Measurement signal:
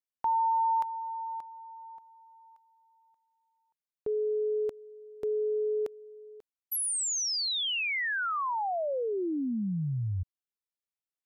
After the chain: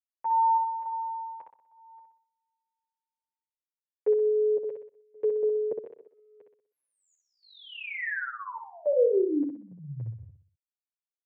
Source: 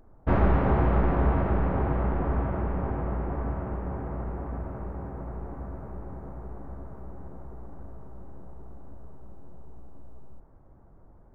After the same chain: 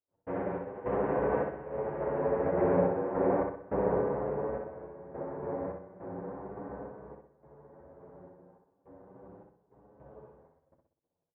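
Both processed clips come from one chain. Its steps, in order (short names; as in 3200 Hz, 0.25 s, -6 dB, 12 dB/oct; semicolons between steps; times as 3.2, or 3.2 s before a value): gate -49 dBFS, range -34 dB; dynamic EQ 480 Hz, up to +5 dB, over -44 dBFS, Q 1.2; limiter -21 dBFS; random-step tremolo 3.5 Hz, depth 95%; speaker cabinet 190–2300 Hz, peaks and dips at 220 Hz -7 dB, 340 Hz -3 dB, 510 Hz +5 dB, 760 Hz -3 dB, 1300 Hz -7 dB; feedback echo 62 ms, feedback 42%, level -4.5 dB; endless flanger 8.4 ms +0.35 Hz; gain +9 dB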